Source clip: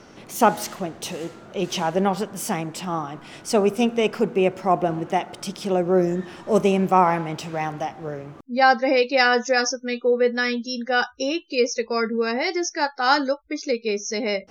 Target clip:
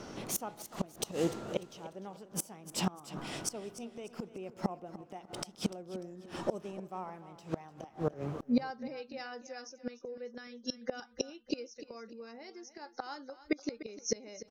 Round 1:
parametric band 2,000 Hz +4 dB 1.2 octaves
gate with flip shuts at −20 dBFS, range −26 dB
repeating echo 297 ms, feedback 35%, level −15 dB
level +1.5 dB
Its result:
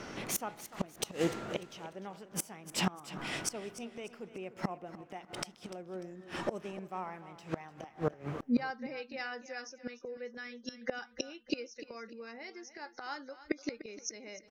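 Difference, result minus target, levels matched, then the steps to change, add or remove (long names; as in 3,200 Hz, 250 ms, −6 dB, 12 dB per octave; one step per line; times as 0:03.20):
2,000 Hz band +6.0 dB
change: parametric band 2,000 Hz −4.5 dB 1.2 octaves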